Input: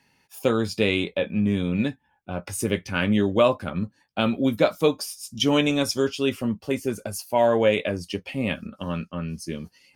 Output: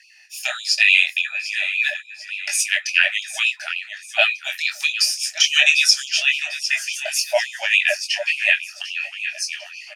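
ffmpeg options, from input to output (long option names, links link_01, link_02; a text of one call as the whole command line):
ffmpeg -i in.wav -filter_complex "[0:a]asettb=1/sr,asplit=3[link_01][link_02][link_03];[link_01]atrim=end=6.204[link_04];[link_02]atrim=start=6.2:end=6.77,asetpts=PTS-STARTPTS,afade=type=in:duration=0.004:curve=qsin,afade=type=out:start_time=0.566:duration=0.004:curve=qsin,acrossover=split=4600[link_05][link_06];[link_06]acompressor=threshold=-58dB:ratio=4:attack=1:release=60[link_07];[link_05][link_07]amix=inputs=2:normalize=0[link_08];[link_03]atrim=start=6.766[link_09];[link_04][link_08]acrossfade=duration=0.004:curve1=hsin:curve2=qsin[link_10];[link_10][link_09]acrossfade=duration=0.004:curve1=qsin:curve2=hsin,acrossover=split=280|4900[link_11][link_12][link_13];[link_12]crystalizer=i=9.5:c=0[link_14];[link_11][link_14][link_13]amix=inputs=3:normalize=0,flanger=delay=19:depth=4.6:speed=1.2,asplit=3[link_15][link_16][link_17];[link_15]bandpass=frequency=530:width_type=q:width=8,volume=0dB[link_18];[link_16]bandpass=frequency=1840:width_type=q:width=8,volume=-6dB[link_19];[link_17]bandpass=frequency=2480:width_type=q:width=8,volume=-9dB[link_20];[link_18][link_19][link_20]amix=inputs=3:normalize=0,asplit=2[link_21][link_22];[link_22]aecho=0:1:748|1496|2244|2992:0.224|0.0985|0.0433|0.0191[link_23];[link_21][link_23]amix=inputs=2:normalize=0,aexciter=amount=7.7:drive=6.5:freq=5000,alimiter=level_in=19.5dB:limit=-1dB:release=50:level=0:latency=1,afftfilt=real='re*gte(b*sr/1024,580*pow(2300/580,0.5+0.5*sin(2*PI*3.5*pts/sr)))':imag='im*gte(b*sr/1024,580*pow(2300/580,0.5+0.5*sin(2*PI*3.5*pts/sr)))':win_size=1024:overlap=0.75" out.wav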